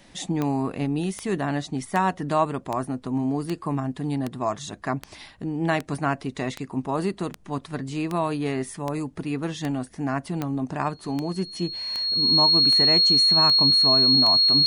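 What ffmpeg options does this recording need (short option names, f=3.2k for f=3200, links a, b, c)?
-af "adeclick=t=4,bandreject=f=4.3k:w=30"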